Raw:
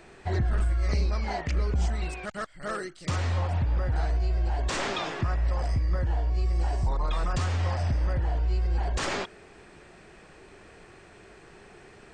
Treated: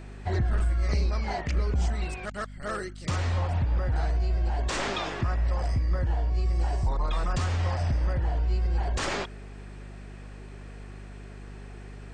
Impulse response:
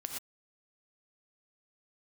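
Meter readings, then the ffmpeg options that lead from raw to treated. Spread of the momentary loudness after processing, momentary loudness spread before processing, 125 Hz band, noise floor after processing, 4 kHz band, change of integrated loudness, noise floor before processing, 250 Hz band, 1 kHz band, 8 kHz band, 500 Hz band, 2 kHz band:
17 LU, 6 LU, 0.0 dB, -42 dBFS, 0.0 dB, 0.0 dB, -52 dBFS, +0.5 dB, 0.0 dB, 0.0 dB, 0.0 dB, 0.0 dB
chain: -af "aeval=exprs='val(0)+0.00891*(sin(2*PI*50*n/s)+sin(2*PI*2*50*n/s)/2+sin(2*PI*3*50*n/s)/3+sin(2*PI*4*50*n/s)/4+sin(2*PI*5*50*n/s)/5)':c=same"

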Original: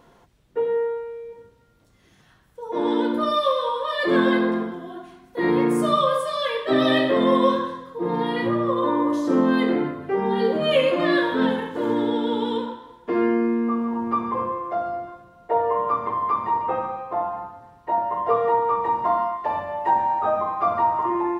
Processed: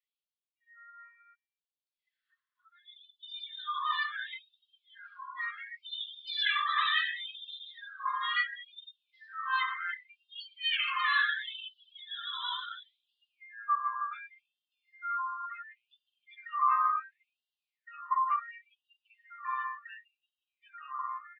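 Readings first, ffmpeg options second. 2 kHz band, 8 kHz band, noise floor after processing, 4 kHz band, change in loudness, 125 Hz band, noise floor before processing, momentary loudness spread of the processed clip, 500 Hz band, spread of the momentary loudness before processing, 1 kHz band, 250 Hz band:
-2.5 dB, n/a, under -85 dBFS, -3.0 dB, -10.0 dB, under -40 dB, -58 dBFS, 21 LU, under -40 dB, 11 LU, -11.0 dB, under -40 dB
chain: -filter_complex "[0:a]asoftclip=type=tanh:threshold=-12.5dB,areverse,acompressor=threshold=-31dB:ratio=8,areverse,equalizer=f=130:w=0.43:g=6.5,asplit=2[a][b];[b]adelay=317,lowpass=f=1.5k:p=1,volume=-4.5dB,asplit=2[c][d];[d]adelay=317,lowpass=f=1.5k:p=1,volume=0.38,asplit=2[e][f];[f]adelay=317,lowpass=f=1.5k:p=1,volume=0.38,asplit=2[g][h];[h]adelay=317,lowpass=f=1.5k:p=1,volume=0.38,asplit=2[i][j];[j]adelay=317,lowpass=f=1.5k:p=1,volume=0.38[k];[c][e][g][i][k]amix=inputs=5:normalize=0[l];[a][l]amix=inputs=2:normalize=0,aresample=11025,aresample=44100,afftdn=nr=29:nf=-44,dynaudnorm=f=960:g=11:m=12.5dB,lowshelf=f=340:g=5,afftfilt=real='re*gte(b*sr/1024,950*pow(2700/950,0.5+0.5*sin(2*PI*0.7*pts/sr)))':imag='im*gte(b*sr/1024,950*pow(2700/950,0.5+0.5*sin(2*PI*0.7*pts/sr)))':win_size=1024:overlap=0.75"

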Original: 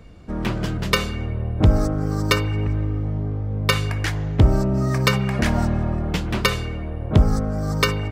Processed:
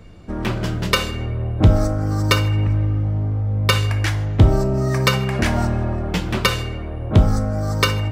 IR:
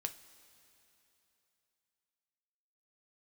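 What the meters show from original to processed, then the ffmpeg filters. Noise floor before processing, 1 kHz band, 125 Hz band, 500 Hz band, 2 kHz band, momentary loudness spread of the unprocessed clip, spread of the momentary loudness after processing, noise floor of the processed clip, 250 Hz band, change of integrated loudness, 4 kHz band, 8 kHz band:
-29 dBFS, +2.5 dB, +3.0 dB, +2.0 dB, +1.5 dB, 8 LU, 9 LU, -28 dBFS, +0.5 dB, +2.0 dB, +3.0 dB, +2.5 dB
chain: -filter_complex "[1:a]atrim=start_sample=2205,afade=t=out:st=0.21:d=0.01,atrim=end_sample=9702[a];[0:a][a]afir=irnorm=-1:irlink=0,volume=3.5dB"

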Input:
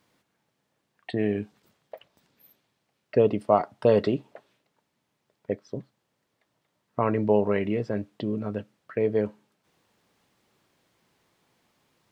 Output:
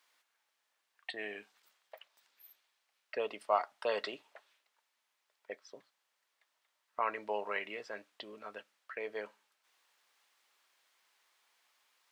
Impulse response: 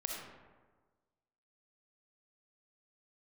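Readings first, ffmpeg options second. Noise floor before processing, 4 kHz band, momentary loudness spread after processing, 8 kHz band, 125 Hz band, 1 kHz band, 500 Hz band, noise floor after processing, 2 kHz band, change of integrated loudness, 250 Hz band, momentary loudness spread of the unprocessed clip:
-77 dBFS, -1.0 dB, 20 LU, n/a, under -35 dB, -6.5 dB, -15.0 dB, -82 dBFS, -1.5 dB, -13.0 dB, -25.5 dB, 14 LU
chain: -af "highpass=1.1k,volume=-1dB"

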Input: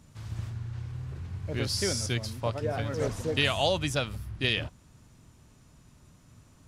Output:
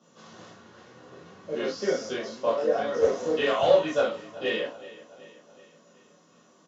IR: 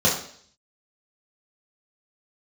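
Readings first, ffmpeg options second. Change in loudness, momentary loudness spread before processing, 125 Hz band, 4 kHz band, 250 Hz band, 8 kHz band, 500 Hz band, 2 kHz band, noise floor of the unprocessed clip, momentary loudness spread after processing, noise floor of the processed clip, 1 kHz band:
+4.0 dB, 12 LU, -16.0 dB, -5.5 dB, +1.0 dB, -8.5 dB, +8.5 dB, -1.0 dB, -58 dBFS, 13 LU, -60 dBFS, +4.5 dB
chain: -filter_complex "[0:a]highpass=f=290:w=0.5412,highpass=f=290:w=1.3066,bandreject=f=2.4k:w=12,acrossover=split=2600[a][b];[b]acompressor=threshold=-43dB:ratio=4:attack=1:release=60[c];[a][c]amix=inputs=2:normalize=0,highshelf=f=5.6k:g=-5,flanger=delay=18.5:depth=4.4:speed=2.1,aresample=16000,aeval=exprs='clip(val(0),-1,0.0447)':c=same,aresample=44100,aecho=1:1:376|752|1128|1504|1880:0.119|0.0642|0.0347|0.0187|0.0101[d];[1:a]atrim=start_sample=2205,atrim=end_sample=3528[e];[d][e]afir=irnorm=-1:irlink=0,volume=-9dB"

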